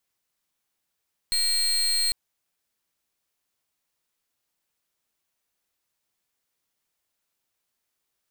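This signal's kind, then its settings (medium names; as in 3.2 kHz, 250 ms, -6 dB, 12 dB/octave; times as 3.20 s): pulse 4.22 kHz, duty 33% -23.5 dBFS 0.80 s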